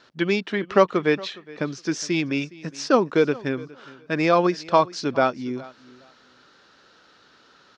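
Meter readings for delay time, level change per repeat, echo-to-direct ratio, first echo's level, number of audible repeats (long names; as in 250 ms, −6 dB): 414 ms, −14.0 dB, −21.0 dB, −21.0 dB, 2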